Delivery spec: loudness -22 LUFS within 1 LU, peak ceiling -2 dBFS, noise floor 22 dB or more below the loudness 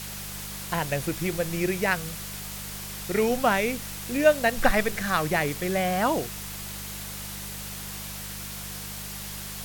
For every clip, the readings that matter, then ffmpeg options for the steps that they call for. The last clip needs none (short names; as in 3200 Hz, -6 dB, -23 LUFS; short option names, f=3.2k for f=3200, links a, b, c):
hum 50 Hz; harmonics up to 200 Hz; hum level -39 dBFS; noise floor -37 dBFS; noise floor target -50 dBFS; loudness -27.5 LUFS; peak -6.5 dBFS; loudness target -22.0 LUFS
-> -af "bandreject=f=50:t=h:w=4,bandreject=f=100:t=h:w=4,bandreject=f=150:t=h:w=4,bandreject=f=200:t=h:w=4"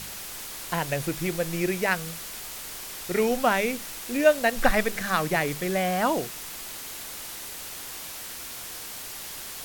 hum none; noise floor -38 dBFS; noise floor target -50 dBFS
-> -af "afftdn=nr=12:nf=-38"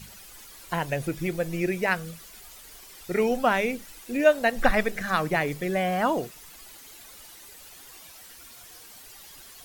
noise floor -48 dBFS; loudness -26.0 LUFS; peak -6.5 dBFS; loudness target -22.0 LUFS
-> -af "volume=4dB"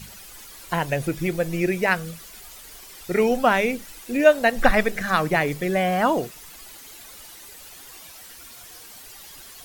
loudness -22.0 LUFS; peak -2.5 dBFS; noise floor -44 dBFS